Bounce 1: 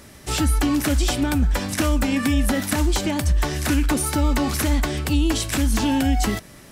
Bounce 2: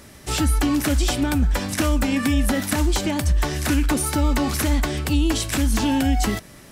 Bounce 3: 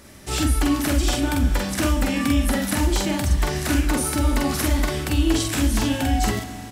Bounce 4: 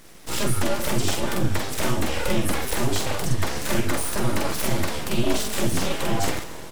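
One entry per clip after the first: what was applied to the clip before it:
no processing that can be heard
double-tracking delay 46 ms −2 dB; four-comb reverb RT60 3.6 s, combs from 27 ms, DRR 10.5 dB; level −2.5 dB
full-wave rectification

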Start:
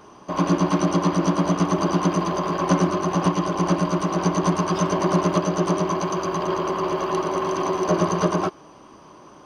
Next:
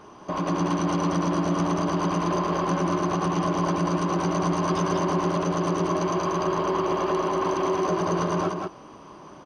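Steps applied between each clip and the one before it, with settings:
high-shelf EQ 6,500 Hz −6.5 dB
brickwall limiter −18 dBFS, peak gain reduction 11.5 dB
single-tap delay 186 ms −3.5 dB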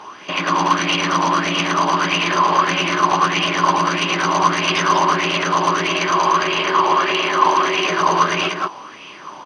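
meter weighting curve D
auto-filter bell 1.6 Hz 880–2,700 Hz +15 dB
level +2 dB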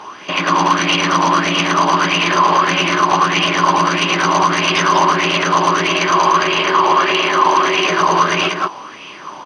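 boost into a limiter +5 dB
level −1.5 dB

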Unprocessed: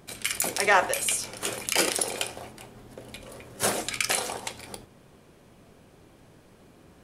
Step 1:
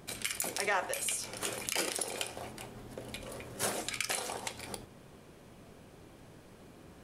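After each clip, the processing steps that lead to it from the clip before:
downward compressor 2 to 1, threshold −37 dBFS, peak gain reduction 11.5 dB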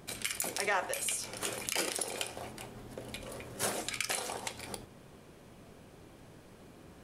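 no processing that can be heard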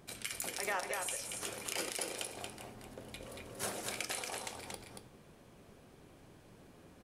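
single-tap delay 231 ms −4.5 dB
level −5.5 dB

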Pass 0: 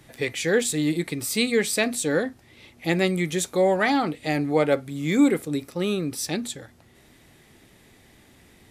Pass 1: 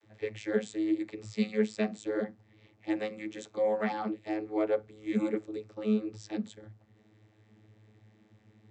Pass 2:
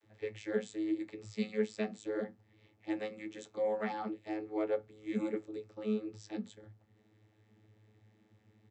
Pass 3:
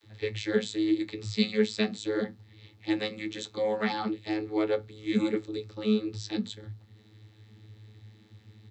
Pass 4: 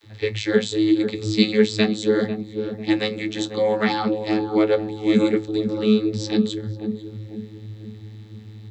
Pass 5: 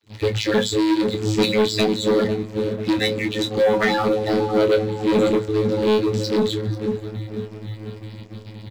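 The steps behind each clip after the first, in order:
channel vocoder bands 32, saw 107 Hz; level −7.5 dB
double-tracking delay 21 ms −13.5 dB; level −5 dB
graphic EQ with 15 bands 100 Hz +7 dB, 630 Hz −7 dB, 4,000 Hz +12 dB; level +8.5 dB
feedback echo with a low-pass in the loop 495 ms, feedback 48%, low-pass 820 Hz, level −7.5 dB; level +8 dB
spectral magnitudes quantised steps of 30 dB; leveller curve on the samples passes 3; double-tracking delay 26 ms −8.5 dB; level −6.5 dB

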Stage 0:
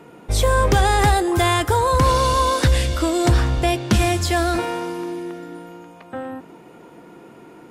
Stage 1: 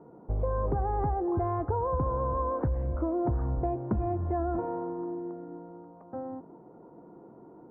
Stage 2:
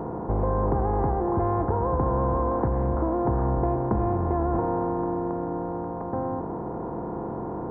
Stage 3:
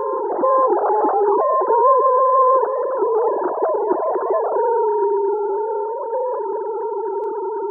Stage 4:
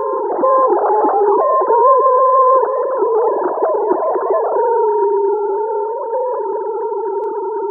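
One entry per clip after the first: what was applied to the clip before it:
inverse Chebyshev low-pass filter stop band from 4,400 Hz, stop band 70 dB; downward compressor, threshold −18 dBFS, peak gain reduction 7 dB; level −7 dB
compressor on every frequency bin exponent 0.4
three sine waves on the formant tracks; backwards echo 464 ms −11 dB; level +7 dB
convolution reverb RT60 1.5 s, pre-delay 8 ms, DRR 18 dB; level +3.5 dB

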